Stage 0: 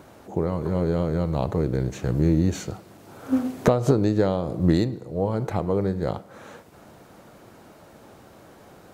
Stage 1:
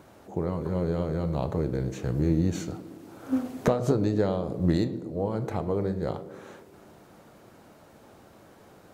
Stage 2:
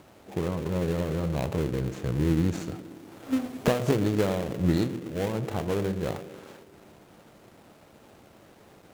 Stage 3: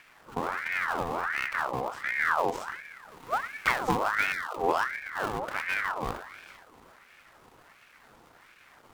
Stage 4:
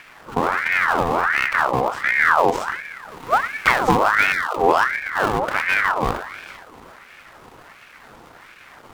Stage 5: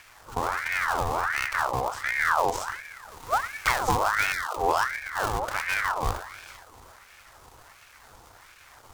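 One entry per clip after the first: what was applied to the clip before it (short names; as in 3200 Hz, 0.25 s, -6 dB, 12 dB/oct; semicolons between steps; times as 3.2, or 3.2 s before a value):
on a send: narrowing echo 0.118 s, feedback 76%, band-pass 310 Hz, level -12 dB; on the sum: flange 0.46 Hz, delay 8.9 ms, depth 5.9 ms, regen -79%
switching dead time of 0.26 ms
spectral delete 4.32–4.57, 510–1400 Hz; ring modulator with a swept carrier 1300 Hz, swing 55%, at 1.4 Hz
high shelf 5400 Hz -4 dB; in parallel at -2.5 dB: limiter -18.5 dBFS, peak gain reduction 7.5 dB; on the sum: gain +7 dB
EQ curve 100 Hz 0 dB, 160 Hz -13 dB, 240 Hz -14 dB, 890 Hz -6 dB, 1900 Hz -9 dB, 2700 Hz -8 dB, 6300 Hz +2 dB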